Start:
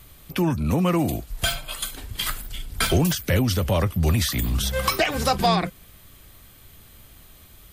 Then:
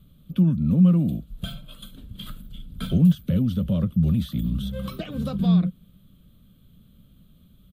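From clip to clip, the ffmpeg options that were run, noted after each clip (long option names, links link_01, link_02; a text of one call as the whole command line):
ffmpeg -i in.wav -af "firequalizer=gain_entry='entry(100,0);entry(180,14);entry(360,-7);entry(550,-3);entry(800,-19);entry(1300,-8);entry(1900,-20);entry(3400,-4);entry(5200,-22);entry(12000,-13)':delay=0.05:min_phase=1,volume=-5.5dB" out.wav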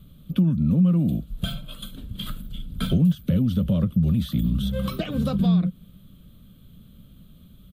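ffmpeg -i in.wav -af "acompressor=threshold=-24dB:ratio=2.5,volume=5dB" out.wav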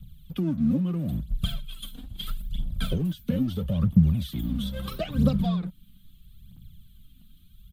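ffmpeg -i in.wav -filter_complex "[0:a]aphaser=in_gain=1:out_gain=1:delay=4.3:decay=0.69:speed=0.76:type=triangular,acrossover=split=210|1600|4800[link_01][link_02][link_03][link_04];[link_02]aeval=exprs='sgn(val(0))*max(abs(val(0))-0.00422,0)':channel_layout=same[link_05];[link_01][link_05][link_03][link_04]amix=inputs=4:normalize=0,volume=-4.5dB" out.wav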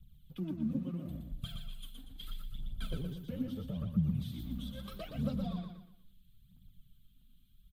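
ffmpeg -i in.wav -filter_complex "[0:a]flanger=delay=1.9:depth=7.3:regen=42:speed=1.8:shape=triangular,asplit=2[link_01][link_02];[link_02]aecho=0:1:119|238|357|476:0.562|0.197|0.0689|0.0241[link_03];[link_01][link_03]amix=inputs=2:normalize=0,volume=-9dB" out.wav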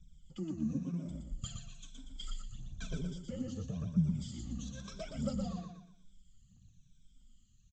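ffmpeg -i in.wav -af "afftfilt=real='re*pow(10,11/40*sin(2*PI*(1.6*log(max(b,1)*sr/1024/100)/log(2)-(-1)*(pts-256)/sr)))':imag='im*pow(10,11/40*sin(2*PI*(1.6*log(max(b,1)*sr/1024/100)/log(2)-(-1)*(pts-256)/sr)))':win_size=1024:overlap=0.75,aexciter=amount=11.6:drive=5.3:freq=5700,aresample=16000,aresample=44100,volume=-2dB" out.wav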